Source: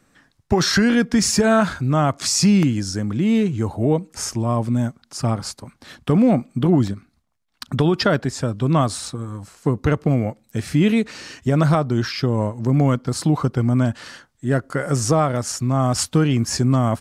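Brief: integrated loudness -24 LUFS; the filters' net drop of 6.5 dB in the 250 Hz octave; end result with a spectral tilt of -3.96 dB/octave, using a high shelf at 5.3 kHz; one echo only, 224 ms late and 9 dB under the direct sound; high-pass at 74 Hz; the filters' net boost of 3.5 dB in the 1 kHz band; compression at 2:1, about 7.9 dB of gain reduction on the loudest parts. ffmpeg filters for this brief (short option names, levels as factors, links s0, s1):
-af "highpass=74,equalizer=f=250:t=o:g=-9,equalizer=f=1000:t=o:g=5,highshelf=f=5300:g=8,acompressor=threshold=0.0447:ratio=2,aecho=1:1:224:0.355,volume=1.33"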